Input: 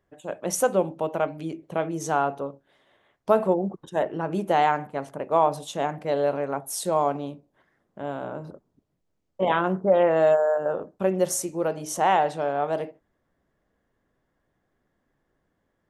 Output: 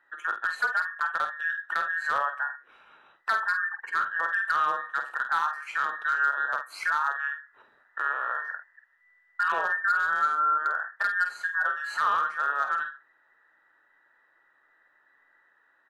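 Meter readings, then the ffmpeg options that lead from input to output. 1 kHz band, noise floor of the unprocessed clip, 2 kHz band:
-1.0 dB, -75 dBFS, +11.0 dB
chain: -filter_complex "[0:a]afftfilt=real='real(if(between(b,1,1012),(2*floor((b-1)/92)+1)*92-b,b),0)':imag='imag(if(between(b,1,1012),(2*floor((b-1)/92)+1)*92-b,b),0)*if(between(b,1,1012),-1,1)':win_size=2048:overlap=0.75,acrossover=split=4900[a][b];[b]acompressor=threshold=-44dB:ratio=4:attack=1:release=60[c];[a][c]amix=inputs=2:normalize=0,acrossover=split=430 2900:gain=0.112 1 0.158[d][e][f];[d][e][f]amix=inputs=3:normalize=0,acompressor=threshold=-37dB:ratio=3,volume=27.5dB,asoftclip=hard,volume=-27.5dB,asplit=2[g][h];[h]adelay=49,volume=-8dB[i];[g][i]amix=inputs=2:normalize=0,volume=9dB"

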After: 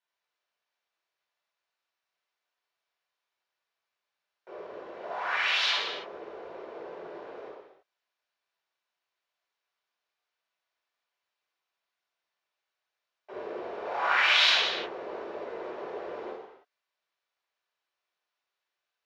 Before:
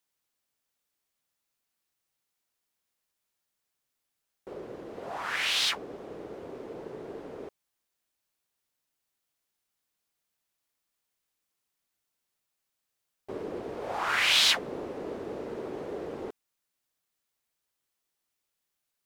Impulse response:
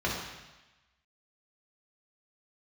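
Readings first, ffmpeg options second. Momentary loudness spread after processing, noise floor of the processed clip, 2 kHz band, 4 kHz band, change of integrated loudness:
22 LU, under -85 dBFS, +3.5 dB, +0.5 dB, +1.0 dB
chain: -filter_complex "[0:a]acrossover=split=460 5400:gain=0.0631 1 0.224[a][b][c];[a][b][c]amix=inputs=3:normalize=0[d];[1:a]atrim=start_sample=2205,afade=t=out:st=0.39:d=0.01,atrim=end_sample=17640[e];[d][e]afir=irnorm=-1:irlink=0,volume=-6dB"

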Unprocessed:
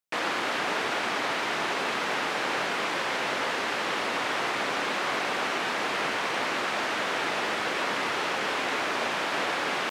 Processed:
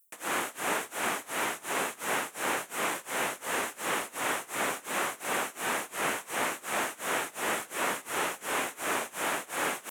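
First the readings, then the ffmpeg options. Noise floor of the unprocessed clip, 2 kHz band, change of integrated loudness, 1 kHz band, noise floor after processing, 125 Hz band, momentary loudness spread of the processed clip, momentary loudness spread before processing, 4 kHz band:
-30 dBFS, -4.5 dB, -4.0 dB, -4.0 dB, -53 dBFS, -4.5 dB, 1 LU, 0 LU, -7.0 dB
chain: -filter_complex "[0:a]tremolo=f=2.8:d=0.96,acrossover=split=3600[a][b];[b]acompressor=threshold=-49dB:ratio=4:attack=1:release=60[c];[a][c]amix=inputs=2:normalize=0,aexciter=amount=14.1:drive=5.6:freq=7k"

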